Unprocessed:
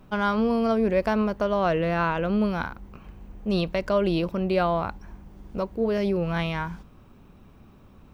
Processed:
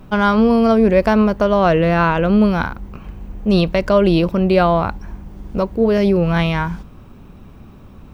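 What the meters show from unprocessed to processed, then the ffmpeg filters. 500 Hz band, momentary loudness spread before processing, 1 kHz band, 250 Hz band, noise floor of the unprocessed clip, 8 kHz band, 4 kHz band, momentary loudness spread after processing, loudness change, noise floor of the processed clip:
+9.0 dB, 11 LU, +8.5 dB, +10.5 dB, −52 dBFS, can't be measured, +8.5 dB, 14 LU, +9.5 dB, −41 dBFS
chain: -af "lowshelf=frequency=250:gain=3.5,volume=8.5dB"

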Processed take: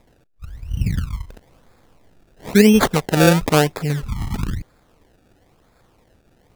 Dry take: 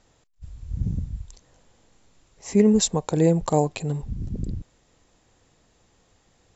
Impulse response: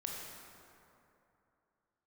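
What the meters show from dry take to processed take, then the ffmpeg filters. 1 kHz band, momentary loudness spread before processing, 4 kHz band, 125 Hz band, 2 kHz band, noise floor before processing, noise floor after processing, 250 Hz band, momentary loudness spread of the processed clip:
+7.5 dB, 19 LU, +9.0 dB, +5.5 dB, +19.0 dB, −64 dBFS, −58 dBFS, +5.5 dB, 18 LU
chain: -af "acrusher=samples=29:mix=1:aa=0.000001:lfo=1:lforange=29:lforate=1,volume=5.5dB"

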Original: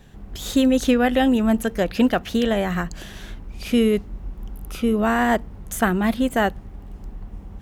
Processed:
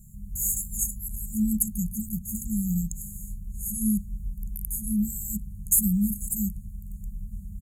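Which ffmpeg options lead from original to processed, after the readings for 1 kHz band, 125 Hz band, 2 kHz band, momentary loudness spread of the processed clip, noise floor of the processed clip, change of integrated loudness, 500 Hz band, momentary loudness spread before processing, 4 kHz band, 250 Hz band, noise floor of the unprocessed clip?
below −40 dB, −1.0 dB, below −40 dB, 16 LU, −42 dBFS, −7.0 dB, below −40 dB, 21 LU, below −40 dB, −8.0 dB, −41 dBFS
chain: -af "afftfilt=real='re*(1-between(b*sr/4096,220,6500))':imag='im*(1-between(b*sr/4096,220,6500))':win_size=4096:overlap=0.75,aemphasis=mode=production:type=50fm,aresample=32000,aresample=44100"

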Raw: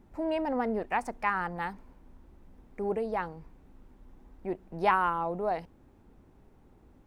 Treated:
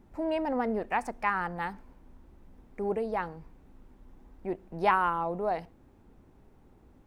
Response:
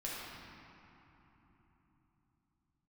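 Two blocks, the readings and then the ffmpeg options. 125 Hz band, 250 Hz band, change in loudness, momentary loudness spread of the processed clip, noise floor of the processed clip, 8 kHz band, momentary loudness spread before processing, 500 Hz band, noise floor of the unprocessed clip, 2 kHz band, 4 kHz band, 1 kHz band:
+0.5 dB, +0.5 dB, +0.5 dB, 12 LU, −59 dBFS, can't be measured, 12 LU, +0.5 dB, −59 dBFS, +0.5 dB, +0.5 dB, +0.5 dB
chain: -filter_complex "[0:a]asplit=2[link_01][link_02];[1:a]atrim=start_sample=2205,atrim=end_sample=6174[link_03];[link_02][link_03]afir=irnorm=-1:irlink=0,volume=-22.5dB[link_04];[link_01][link_04]amix=inputs=2:normalize=0"

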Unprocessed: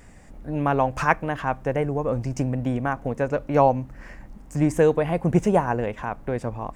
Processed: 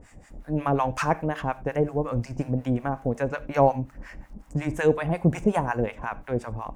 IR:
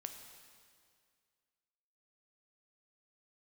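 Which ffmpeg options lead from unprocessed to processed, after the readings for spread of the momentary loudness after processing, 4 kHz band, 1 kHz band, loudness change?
11 LU, can't be measured, −3.0 dB, −2.5 dB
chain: -filter_complex "[0:a]acrossover=split=820[link_01][link_02];[link_01]aeval=exprs='val(0)*(1-1/2+1/2*cos(2*PI*5.5*n/s))':channel_layout=same[link_03];[link_02]aeval=exprs='val(0)*(1-1/2-1/2*cos(2*PI*5.5*n/s))':channel_layout=same[link_04];[link_03][link_04]amix=inputs=2:normalize=0,asplit=2[link_05][link_06];[1:a]atrim=start_sample=2205,atrim=end_sample=4410[link_07];[link_06][link_07]afir=irnorm=-1:irlink=0,volume=0dB[link_08];[link_05][link_08]amix=inputs=2:normalize=0,volume=-1dB"

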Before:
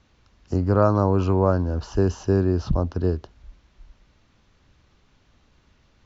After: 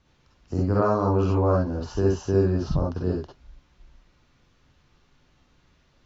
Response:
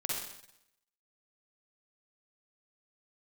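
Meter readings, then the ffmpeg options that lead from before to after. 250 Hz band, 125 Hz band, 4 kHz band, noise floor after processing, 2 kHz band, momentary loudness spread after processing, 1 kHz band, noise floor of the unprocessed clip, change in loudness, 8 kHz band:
−2.0 dB, −2.5 dB, −1.0 dB, −63 dBFS, −1.5 dB, 7 LU, −1.5 dB, −62 dBFS, −2.0 dB, can't be measured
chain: -filter_complex "[1:a]atrim=start_sample=2205,atrim=end_sample=3528[link_01];[0:a][link_01]afir=irnorm=-1:irlink=0,volume=-3.5dB"

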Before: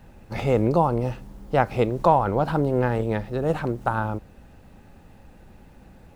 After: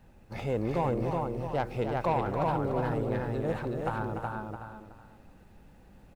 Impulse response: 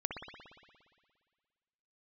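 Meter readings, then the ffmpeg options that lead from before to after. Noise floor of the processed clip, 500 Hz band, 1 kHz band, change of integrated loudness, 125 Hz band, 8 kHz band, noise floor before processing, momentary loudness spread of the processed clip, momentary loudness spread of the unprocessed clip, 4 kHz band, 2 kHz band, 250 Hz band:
−56 dBFS, −7.5 dB, −8.0 dB, −8.0 dB, −7.0 dB, can't be measured, −50 dBFS, 11 LU, 11 LU, −6.5 dB, −7.5 dB, −7.0 dB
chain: -filter_complex "[0:a]asplit=2[link_01][link_02];[link_02]aecho=0:1:372|744|1116:0.668|0.16|0.0385[link_03];[link_01][link_03]amix=inputs=2:normalize=0,asoftclip=type=tanh:threshold=-11.5dB,asplit=2[link_04][link_05];[link_05]aecho=0:1:293:0.398[link_06];[link_04][link_06]amix=inputs=2:normalize=0,volume=-8.5dB"

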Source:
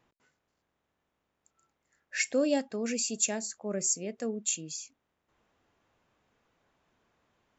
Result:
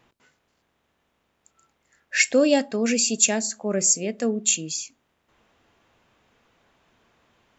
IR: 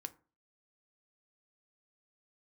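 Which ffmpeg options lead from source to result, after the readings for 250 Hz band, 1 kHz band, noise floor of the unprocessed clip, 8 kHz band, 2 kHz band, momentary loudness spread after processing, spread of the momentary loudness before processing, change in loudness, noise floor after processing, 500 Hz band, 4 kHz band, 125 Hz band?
+9.0 dB, +9.0 dB, −82 dBFS, can't be measured, +11.0 dB, 9 LU, 11 LU, +9.5 dB, −72 dBFS, +9.0 dB, +11.0 dB, +9.0 dB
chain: -filter_complex "[0:a]equalizer=frequency=3000:width=1.1:gain=3.5,asplit=2[link_01][link_02];[1:a]atrim=start_sample=2205,asetrate=32634,aresample=44100[link_03];[link_02][link_03]afir=irnorm=-1:irlink=0,volume=-4dB[link_04];[link_01][link_04]amix=inputs=2:normalize=0,volume=5.5dB"

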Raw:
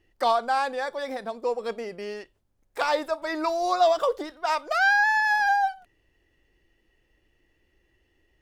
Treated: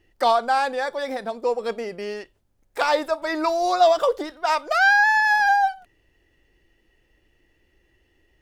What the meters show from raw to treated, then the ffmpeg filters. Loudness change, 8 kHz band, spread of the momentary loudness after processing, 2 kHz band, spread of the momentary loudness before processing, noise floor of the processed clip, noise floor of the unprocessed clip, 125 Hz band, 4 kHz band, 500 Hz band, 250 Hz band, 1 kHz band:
+4.0 dB, +4.0 dB, 14 LU, +4.0 dB, 14 LU, −66 dBFS, −70 dBFS, can't be measured, +4.0 dB, +4.0 dB, +4.0 dB, +4.0 dB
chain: -af "bandreject=frequency=1100:width=22,volume=4dB"

